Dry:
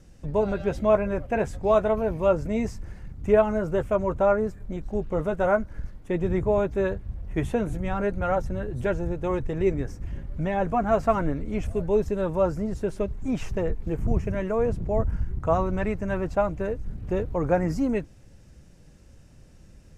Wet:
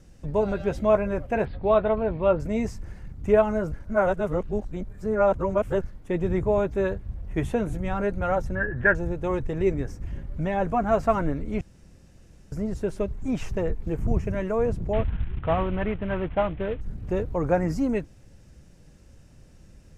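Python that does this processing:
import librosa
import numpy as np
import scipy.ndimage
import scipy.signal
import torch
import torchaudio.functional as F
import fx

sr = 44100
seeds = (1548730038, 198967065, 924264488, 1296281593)

y = fx.steep_lowpass(x, sr, hz=4500.0, slope=96, at=(1.45, 2.4))
y = fx.lowpass_res(y, sr, hz=1700.0, q=15.0, at=(8.55, 8.95))
y = fx.cvsd(y, sr, bps=16000, at=(14.93, 16.81))
y = fx.edit(y, sr, fx.reverse_span(start_s=3.72, length_s=2.09),
    fx.room_tone_fill(start_s=11.61, length_s=0.91), tone=tone)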